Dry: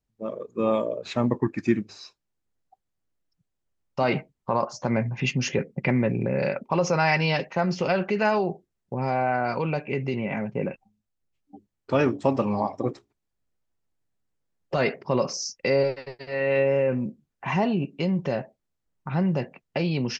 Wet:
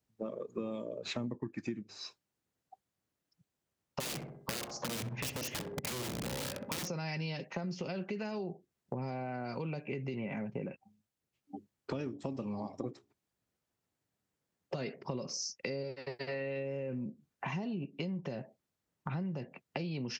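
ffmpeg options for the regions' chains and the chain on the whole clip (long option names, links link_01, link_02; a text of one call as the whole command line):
ffmpeg -i in.wav -filter_complex "[0:a]asettb=1/sr,asplit=3[link_01][link_02][link_03];[link_01]atrim=end=4.004[link_04];[link_02]atrim=start=4:end=6.88,asetpts=PTS-STARTPTS,afade=type=in:duration=0.004:curve=qsin,afade=type=out:start_time=2.876:duration=0.004:curve=qsin,bandreject=frequency=404.5:width_type=h:width=4,bandreject=frequency=809:width_type=h:width=4,bandreject=frequency=1213.5:width_type=h:width=4,bandreject=frequency=1618:width_type=h:width=4,bandreject=frequency=2022.5:width_type=h:width=4,aeval=exprs='(mod(11.2*val(0)+1,2)-1)/11.2':channel_layout=same,asplit=2[link_05][link_06];[link_06]adelay=64,lowpass=frequency=830:poles=1,volume=-5.5dB,asplit=2[link_07][link_08];[link_08]adelay=64,lowpass=frequency=830:poles=1,volume=0.4,asplit=2[link_09][link_10];[link_10]adelay=64,lowpass=frequency=830:poles=1,volume=0.4,asplit=2[link_11][link_12];[link_12]adelay=64,lowpass=frequency=830:poles=1,volume=0.4,asplit=2[link_13][link_14];[link_14]adelay=64,lowpass=frequency=830:poles=1,volume=0.4[link_15];[link_05][link_07][link_09][link_11][link_13][link_15]amix=inputs=6:normalize=0,atrim=end_sample=127008[link_16];[link_03]atrim=start=6.876[link_17];[link_04][link_16]acrossfade=duration=0.004:curve1=hsin:curve2=qsin[link_18];[link_18][link_17]acrossfade=duration=0.004:curve1=qsin:curve2=hsin,acrossover=split=420|3000[link_19][link_20][link_21];[link_20]acompressor=threshold=-35dB:ratio=6[link_22];[link_19][link_22][link_21]amix=inputs=3:normalize=0,highpass=93,acompressor=threshold=-38dB:ratio=6,volume=2dB" out.wav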